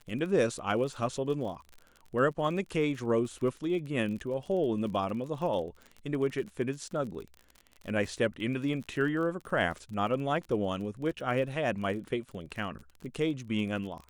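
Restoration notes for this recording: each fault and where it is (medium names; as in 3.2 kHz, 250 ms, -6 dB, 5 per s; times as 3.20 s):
crackle 34 per s -38 dBFS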